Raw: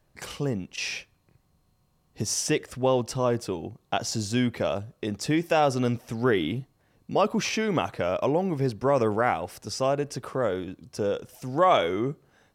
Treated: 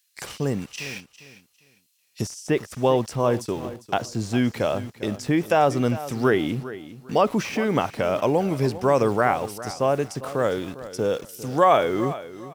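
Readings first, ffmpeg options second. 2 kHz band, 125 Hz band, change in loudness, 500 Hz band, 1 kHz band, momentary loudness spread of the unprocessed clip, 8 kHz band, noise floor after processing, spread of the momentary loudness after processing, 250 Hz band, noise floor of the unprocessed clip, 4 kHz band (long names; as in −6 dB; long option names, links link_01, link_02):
+2.5 dB, +3.0 dB, +3.0 dB, +3.5 dB, +3.5 dB, 10 LU, −4.0 dB, −65 dBFS, 12 LU, +3.0 dB, −68 dBFS, −1.5 dB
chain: -filter_complex "[0:a]highpass=56,highshelf=frequency=3200:gain=10,acrossover=split=2000[link_01][link_02];[link_01]aeval=exprs='val(0)*gte(abs(val(0)),0.00794)':channel_layout=same[link_03];[link_02]acompressor=threshold=-40dB:ratio=16[link_04];[link_03][link_04]amix=inputs=2:normalize=0,aecho=1:1:402|804|1206:0.178|0.0427|0.0102,volume=3dB"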